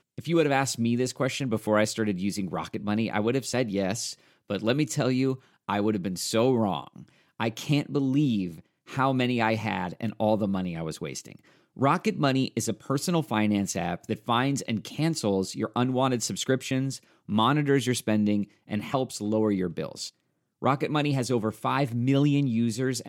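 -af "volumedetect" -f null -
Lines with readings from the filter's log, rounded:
mean_volume: -26.9 dB
max_volume: -9.7 dB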